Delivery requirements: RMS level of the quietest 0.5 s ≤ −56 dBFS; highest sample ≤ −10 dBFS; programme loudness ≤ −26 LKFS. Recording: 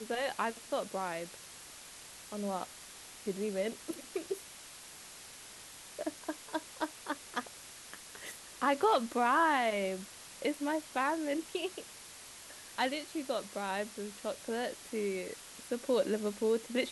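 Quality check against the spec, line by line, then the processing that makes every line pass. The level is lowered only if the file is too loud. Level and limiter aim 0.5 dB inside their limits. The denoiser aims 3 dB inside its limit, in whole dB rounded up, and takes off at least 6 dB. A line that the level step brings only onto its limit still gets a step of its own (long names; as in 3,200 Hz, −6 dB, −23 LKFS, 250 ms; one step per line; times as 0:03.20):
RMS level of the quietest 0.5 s −51 dBFS: out of spec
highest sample −17.5 dBFS: in spec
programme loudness −35.5 LKFS: in spec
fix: broadband denoise 8 dB, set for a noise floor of −51 dBFS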